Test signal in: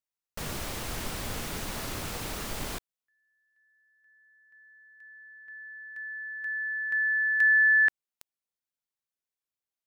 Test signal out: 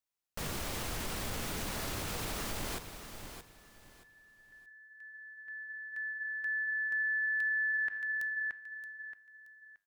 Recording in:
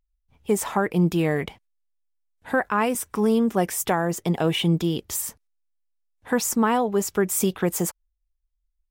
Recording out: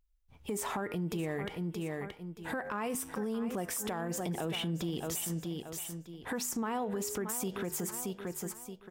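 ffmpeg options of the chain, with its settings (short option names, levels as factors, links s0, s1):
-filter_complex "[0:a]flanger=delay=9.4:depth=1.9:regen=-88:speed=0.65:shape=triangular,asplit=2[s0][s1];[s1]aecho=0:1:625|1250|1875:0.224|0.0582|0.0151[s2];[s0][s2]amix=inputs=2:normalize=0,acompressor=threshold=0.0178:ratio=12:attack=0.45:release=130:knee=6:detection=peak,volume=1.88"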